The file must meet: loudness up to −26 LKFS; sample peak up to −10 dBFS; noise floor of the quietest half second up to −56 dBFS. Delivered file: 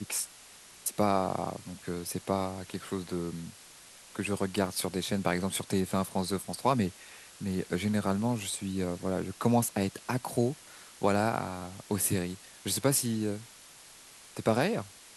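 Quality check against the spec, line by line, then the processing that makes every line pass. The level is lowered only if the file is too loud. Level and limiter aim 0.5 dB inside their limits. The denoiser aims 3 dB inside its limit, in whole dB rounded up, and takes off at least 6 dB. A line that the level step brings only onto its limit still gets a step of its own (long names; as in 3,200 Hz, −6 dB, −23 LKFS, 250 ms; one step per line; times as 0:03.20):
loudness −31.5 LKFS: in spec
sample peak −11.5 dBFS: in spec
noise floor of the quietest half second −53 dBFS: out of spec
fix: broadband denoise 6 dB, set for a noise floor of −53 dBFS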